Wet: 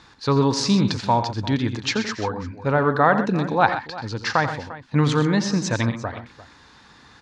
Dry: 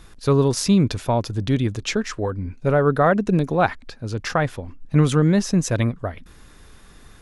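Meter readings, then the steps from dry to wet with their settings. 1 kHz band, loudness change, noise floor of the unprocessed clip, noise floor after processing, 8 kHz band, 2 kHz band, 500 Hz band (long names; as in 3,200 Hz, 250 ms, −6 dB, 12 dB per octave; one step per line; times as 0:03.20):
+3.5 dB, −1.0 dB, −48 dBFS, −51 dBFS, −2.0 dB, +3.5 dB, −2.5 dB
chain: loudspeaker in its box 110–6,600 Hz, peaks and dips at 170 Hz −5 dB, 390 Hz −5 dB, 630 Hz −5 dB, 900 Hz +9 dB, 1,700 Hz +4 dB, 4,300 Hz +7 dB
multi-tap delay 87/127/348 ms −11.5/−12/−17 dB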